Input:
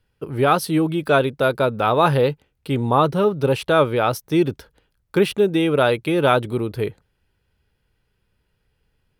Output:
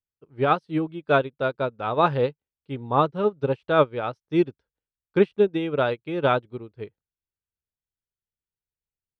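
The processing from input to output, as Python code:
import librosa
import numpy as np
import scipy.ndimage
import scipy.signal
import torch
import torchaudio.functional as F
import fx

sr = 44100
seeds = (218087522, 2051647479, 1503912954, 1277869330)

y = scipy.ndimage.gaussian_filter1d(x, 1.6, mode='constant')
y = fx.upward_expand(y, sr, threshold_db=-33.0, expansion=2.5)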